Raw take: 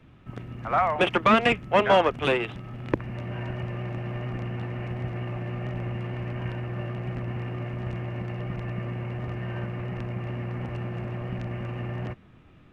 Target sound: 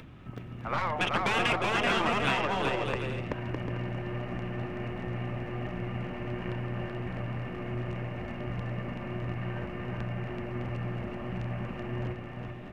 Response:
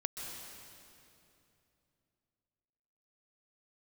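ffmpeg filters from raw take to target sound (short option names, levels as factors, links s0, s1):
-filter_complex "[0:a]aeval=exprs='0.376*(cos(1*acos(clip(val(0)/0.376,-1,1)))-cos(1*PI/2))+0.0168*(cos(8*acos(clip(val(0)/0.376,-1,1)))-cos(8*PI/2))':c=same,asplit=2[s0][s1];[s1]volume=7.08,asoftclip=hard,volume=0.141,volume=0.316[s2];[s0][s2]amix=inputs=2:normalize=0,acompressor=mode=upward:threshold=0.0178:ratio=2.5,aecho=1:1:380|608|744.8|826.9|876.1:0.631|0.398|0.251|0.158|0.1,afftfilt=real='re*lt(hypot(re,im),0.562)':imag='im*lt(hypot(re,im),0.562)':win_size=1024:overlap=0.75,volume=0.531"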